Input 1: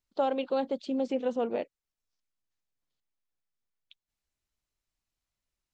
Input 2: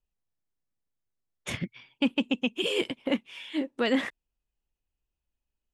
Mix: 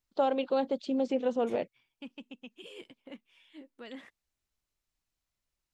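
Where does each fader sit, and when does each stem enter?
+0.5 dB, -20.0 dB; 0.00 s, 0.00 s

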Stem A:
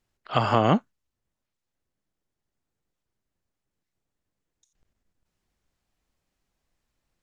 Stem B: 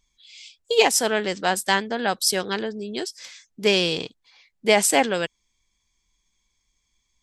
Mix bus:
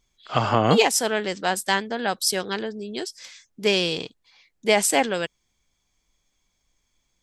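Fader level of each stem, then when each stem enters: +1.0 dB, -1.5 dB; 0.00 s, 0.00 s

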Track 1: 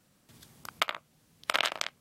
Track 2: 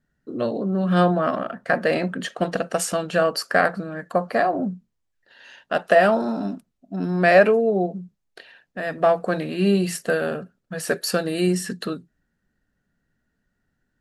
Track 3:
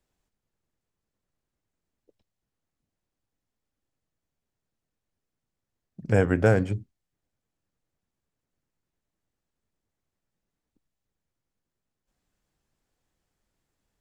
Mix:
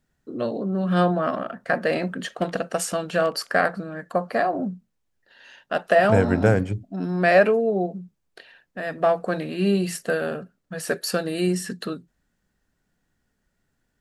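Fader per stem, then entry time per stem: -19.5 dB, -2.0 dB, +1.5 dB; 1.60 s, 0.00 s, 0.00 s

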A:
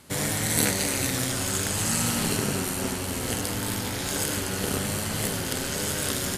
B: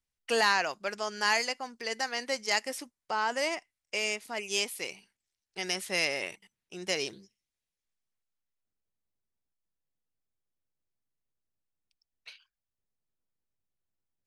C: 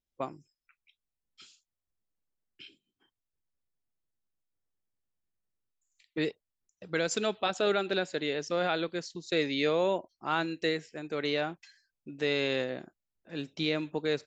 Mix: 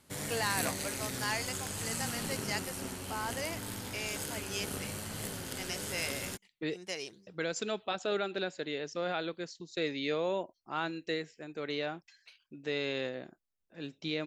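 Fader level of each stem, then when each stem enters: -11.5 dB, -8.0 dB, -5.0 dB; 0.00 s, 0.00 s, 0.45 s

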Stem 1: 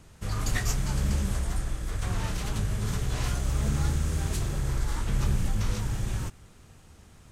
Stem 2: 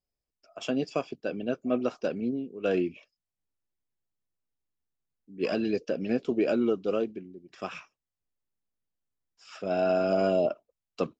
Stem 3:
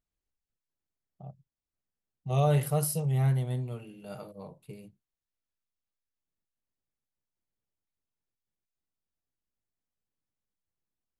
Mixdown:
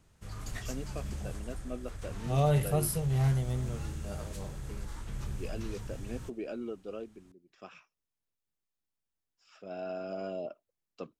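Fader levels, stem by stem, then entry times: -12.0 dB, -13.0 dB, -1.5 dB; 0.00 s, 0.00 s, 0.00 s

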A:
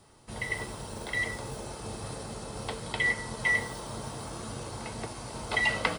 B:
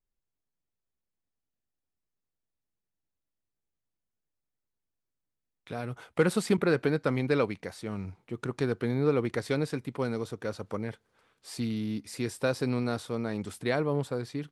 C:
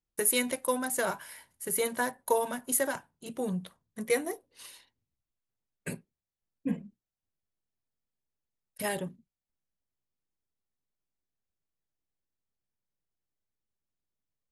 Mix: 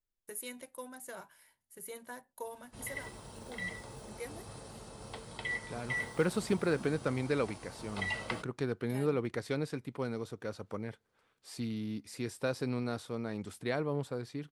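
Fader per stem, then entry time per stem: -9.5 dB, -5.5 dB, -16.0 dB; 2.45 s, 0.00 s, 0.10 s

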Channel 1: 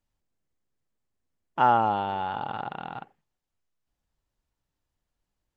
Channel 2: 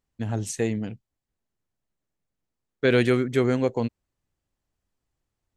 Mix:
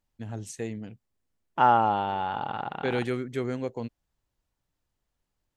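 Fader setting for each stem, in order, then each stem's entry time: +0.5 dB, -8.5 dB; 0.00 s, 0.00 s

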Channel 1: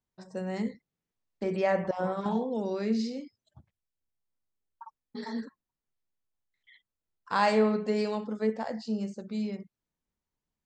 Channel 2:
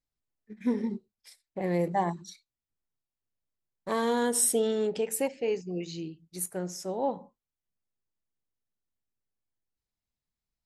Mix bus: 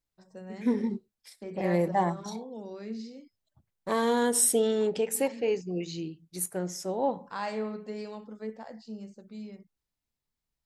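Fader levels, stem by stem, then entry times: -9.5 dB, +1.5 dB; 0.00 s, 0.00 s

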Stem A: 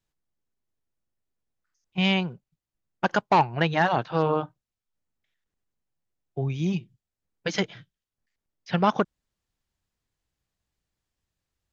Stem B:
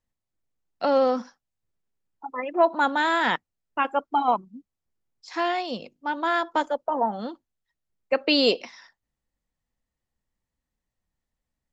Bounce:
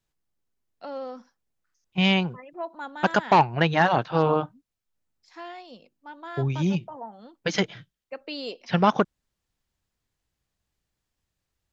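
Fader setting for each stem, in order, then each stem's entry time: +2.0 dB, -14.5 dB; 0.00 s, 0.00 s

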